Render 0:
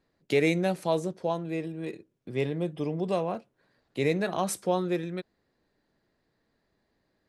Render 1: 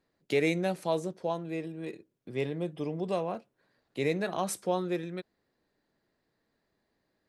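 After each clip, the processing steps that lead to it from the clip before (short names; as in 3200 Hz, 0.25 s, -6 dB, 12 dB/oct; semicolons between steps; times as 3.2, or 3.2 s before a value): low shelf 120 Hz -5 dB; gain -2.5 dB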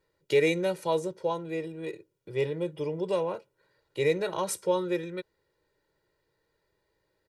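comb 2.1 ms, depth 89%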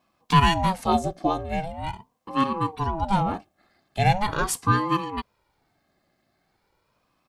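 ring modulator with a swept carrier 440 Hz, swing 55%, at 0.41 Hz; gain +8.5 dB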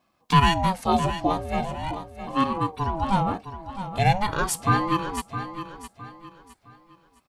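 feedback echo 0.662 s, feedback 33%, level -11 dB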